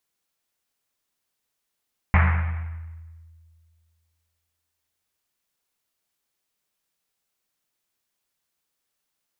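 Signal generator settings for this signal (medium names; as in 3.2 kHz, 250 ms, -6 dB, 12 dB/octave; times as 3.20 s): Risset drum length 3.43 s, pitch 82 Hz, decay 2.15 s, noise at 1.5 kHz, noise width 1.5 kHz, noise 25%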